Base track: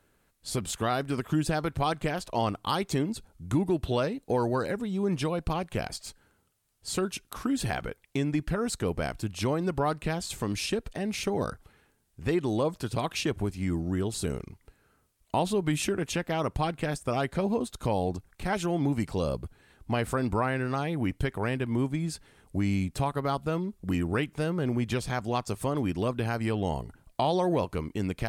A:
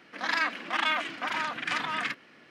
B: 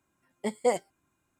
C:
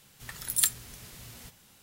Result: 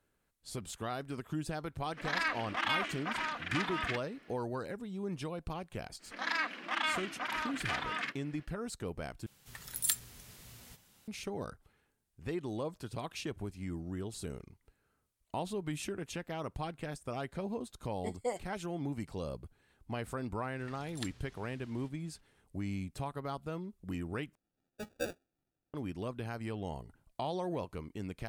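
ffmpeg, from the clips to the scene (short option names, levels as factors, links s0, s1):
-filter_complex "[1:a]asplit=2[s0][s1];[3:a]asplit=2[s2][s3];[2:a]asplit=2[s4][s5];[0:a]volume=0.299[s6];[s3]lowpass=4400[s7];[s5]acrusher=samples=42:mix=1:aa=0.000001[s8];[s6]asplit=3[s9][s10][s11];[s9]atrim=end=9.264[s12];[s2]atrim=end=1.82,asetpts=PTS-STARTPTS,volume=0.473[s13];[s10]atrim=start=11.076:end=24.354[s14];[s8]atrim=end=1.39,asetpts=PTS-STARTPTS,volume=0.237[s15];[s11]atrim=start=25.736[s16];[s0]atrim=end=2.5,asetpts=PTS-STARTPTS,volume=0.531,afade=t=in:d=0.004:c=hsin,afade=t=out:st=2.496:d=0.004:c=hsin,adelay=1840[s17];[s1]atrim=end=2.5,asetpts=PTS-STARTPTS,volume=0.501,afade=t=in:d=0.05,afade=t=out:st=2.45:d=0.05,adelay=5980[s18];[s4]atrim=end=1.39,asetpts=PTS-STARTPTS,volume=0.299,afade=t=in:d=0.004:c=hsin,afade=t=out:st=1.386:d=0.004:c=hsin,adelay=17600[s19];[s7]atrim=end=1.82,asetpts=PTS-STARTPTS,volume=0.282,afade=t=in:d=0.004:c=hsin,afade=t=out:st=1.816:d=0.004:c=hsin,adelay=20390[s20];[s12][s13]acrossfade=d=0.004:c1=hsin:c2=hsin[s21];[s21][s14]acrossfade=d=0.004:c1=hsin:c2=hsin[s22];[s22][s15]acrossfade=d=0.004:c1=hsin:c2=hsin[s23];[s23][s16]acrossfade=d=0.004:c1=hsin:c2=hsin[s24];[s24][s17][s18][s19][s20]amix=inputs=5:normalize=0"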